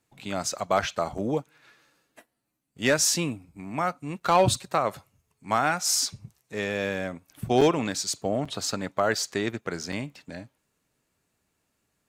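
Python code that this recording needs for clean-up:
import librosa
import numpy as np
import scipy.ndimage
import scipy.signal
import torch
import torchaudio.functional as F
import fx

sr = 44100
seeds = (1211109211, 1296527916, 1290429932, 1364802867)

y = fx.fix_declip(x, sr, threshold_db=-11.5)
y = fx.fix_interpolate(y, sr, at_s=(1.18, 4.2, 7.61, 8.45, 9.92), length_ms=4.9)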